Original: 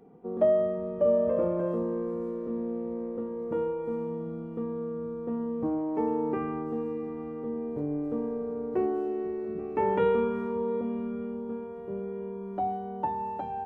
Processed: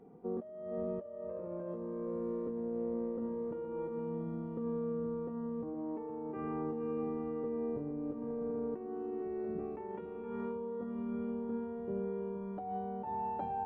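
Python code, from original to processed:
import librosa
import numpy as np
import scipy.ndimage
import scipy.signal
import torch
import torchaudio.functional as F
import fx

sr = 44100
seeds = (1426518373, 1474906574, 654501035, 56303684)

y = fx.high_shelf(x, sr, hz=2800.0, db=-8.5)
y = fx.over_compress(y, sr, threshold_db=-34.0, ratio=-1.0)
y = y + 10.0 ** (-10.0 / 20.0) * np.pad(y, (int(468 * sr / 1000.0), 0))[:len(y)]
y = F.gain(torch.from_numpy(y), -5.0).numpy()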